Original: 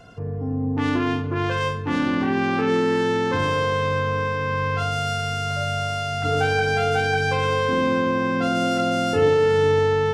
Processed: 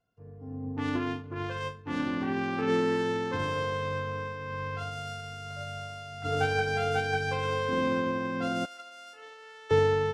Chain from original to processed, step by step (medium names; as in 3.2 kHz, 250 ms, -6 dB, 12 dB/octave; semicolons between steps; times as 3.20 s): 8.65–9.71 s: high-pass 1.1 kHz 12 dB/octave; upward expansion 2.5:1, over -38 dBFS; trim -2.5 dB